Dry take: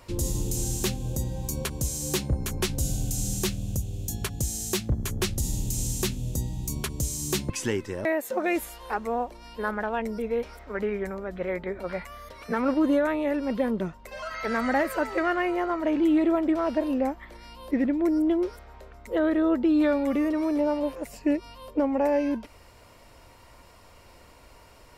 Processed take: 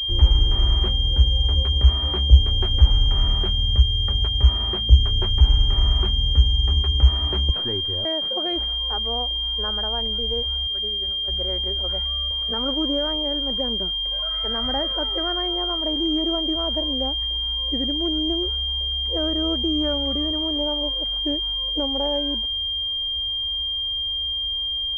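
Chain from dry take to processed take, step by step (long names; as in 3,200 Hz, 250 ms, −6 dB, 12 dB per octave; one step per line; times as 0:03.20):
low shelf with overshoot 100 Hz +12.5 dB, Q 3
0:10.67–0:11.28: downward expander −19 dBFS
switching amplifier with a slow clock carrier 3,200 Hz
level −2 dB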